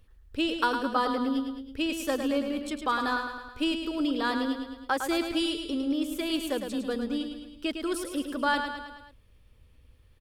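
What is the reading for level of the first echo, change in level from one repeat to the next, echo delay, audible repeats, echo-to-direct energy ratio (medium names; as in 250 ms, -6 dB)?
-7.0 dB, -5.0 dB, 107 ms, 5, -5.5 dB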